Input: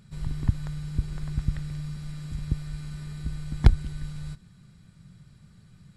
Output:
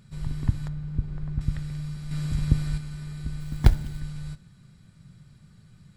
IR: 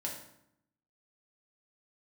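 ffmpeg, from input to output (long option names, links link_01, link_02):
-filter_complex "[0:a]asettb=1/sr,asplit=3[link_01][link_02][link_03];[link_01]atrim=end=0.684[link_04];[link_02]atrim=start=0.68:end=1.41,asetpts=PTS-STARTPTS,afade=type=in:duration=0.004:curve=qsin,afade=type=out:start_time=0.726:duration=0.004:curve=qsin,lowpass=frequency=1000:poles=1[link_05];[link_03]atrim=start=1.406[link_06];[link_04][link_05]acrossfade=duration=0.004:curve1=hsin:curve2=qsin[link_07];[link_07][link_06]acrossfade=duration=0.004:curve1=qsin:curve2=hsin,asettb=1/sr,asplit=3[link_08][link_09][link_10];[link_08]atrim=end=2.114[link_11];[link_09]atrim=start=2.11:end=2.78,asetpts=PTS-STARTPTS,afade=type=in:duration=0.004:curve=qsin,afade=type=out:start_time=0.666:duration=0.004:curve=qsin,acontrast=76[link_12];[link_10]atrim=start=2.776[link_13];[link_11][link_12]acrossfade=duration=0.004:curve1=hsin:curve2=qsin[link_14];[link_14][link_13]acrossfade=duration=0.004:curve1=qsin:curve2=hsin,asettb=1/sr,asplit=3[link_15][link_16][link_17];[link_15]atrim=end=3.404[link_18];[link_16]atrim=start=3.4:end=4,asetpts=PTS-STARTPTS,afade=type=in:duration=0.004:curve=qsin,afade=type=out:start_time=0.596:duration=0.004:curve=qsin,acrusher=bits=7:mode=log:mix=0:aa=0.000001[link_19];[link_17]atrim=start=3.996[link_20];[link_18][link_19]acrossfade=duration=0.004:curve1=hsin:curve2=qsin[link_21];[link_21][link_20]acrossfade=duration=0.004:curve1=qsin:curve2=hsin,asplit=2[link_22][link_23];[1:a]atrim=start_sample=2205,adelay=8[link_24];[link_23][link_24]afir=irnorm=-1:irlink=0,volume=-14dB[link_25];[link_22][link_25]amix=inputs=2:normalize=0"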